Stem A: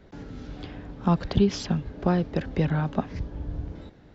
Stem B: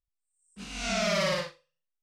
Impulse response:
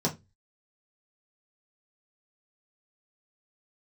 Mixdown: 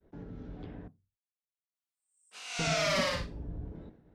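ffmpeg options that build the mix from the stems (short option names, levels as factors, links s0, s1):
-filter_complex "[0:a]agate=range=0.0224:threshold=0.00501:ratio=3:detection=peak,lowpass=f=1000:p=1,asoftclip=type=tanh:threshold=0.0562,volume=0.531,asplit=3[s0][s1][s2];[s0]atrim=end=0.88,asetpts=PTS-STARTPTS,afade=t=out:st=0.876:d=0.004:c=hsin[s3];[s1]atrim=start=0.88:end=2.59,asetpts=PTS-STARTPTS,volume=0[s4];[s2]atrim=start=2.59,asetpts=PTS-STARTPTS,afade=t=in:d=0.004:c=hsin[s5];[s3][s4][s5]concat=n=3:v=0:a=1,asplit=2[s6][s7];[s7]volume=0.0794[s8];[1:a]highpass=f=560:w=0.5412,highpass=f=560:w=1.3066,adelay=1750,volume=0.891[s9];[2:a]atrim=start_sample=2205[s10];[s8][s10]afir=irnorm=-1:irlink=0[s11];[s6][s9][s11]amix=inputs=3:normalize=0"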